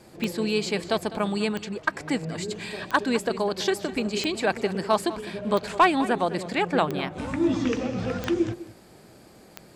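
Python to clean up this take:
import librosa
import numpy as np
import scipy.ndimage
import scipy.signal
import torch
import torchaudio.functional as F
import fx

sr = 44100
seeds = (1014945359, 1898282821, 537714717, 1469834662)

y = fx.fix_declick_ar(x, sr, threshold=10.0)
y = fx.fix_echo_inverse(y, sr, delay_ms=203, level_db=-16.0)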